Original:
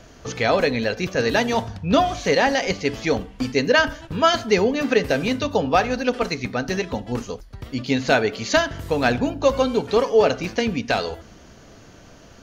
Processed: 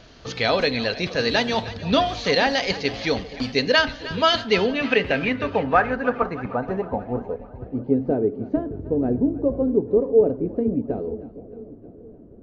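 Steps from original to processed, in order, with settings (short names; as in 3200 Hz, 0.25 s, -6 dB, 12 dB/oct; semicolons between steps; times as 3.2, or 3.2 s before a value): low-pass sweep 4200 Hz -> 360 Hz, 4.26–8.19; split-band echo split 670 Hz, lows 0.474 s, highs 0.309 s, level -15.5 dB; wow and flutter 26 cents; gain -2.5 dB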